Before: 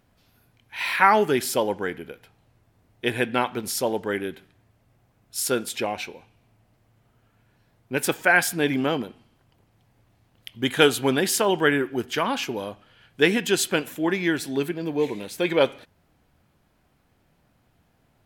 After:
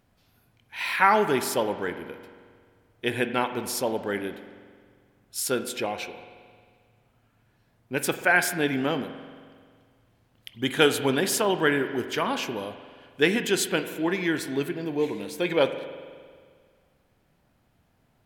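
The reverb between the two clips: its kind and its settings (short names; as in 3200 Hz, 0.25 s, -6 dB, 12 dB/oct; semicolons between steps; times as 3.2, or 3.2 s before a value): spring tank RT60 1.9 s, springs 44 ms, chirp 60 ms, DRR 10 dB; gain -2.5 dB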